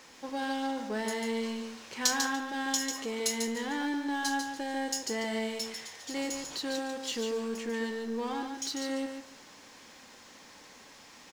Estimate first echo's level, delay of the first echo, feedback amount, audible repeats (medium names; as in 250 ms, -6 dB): -6.0 dB, 145 ms, 18%, 2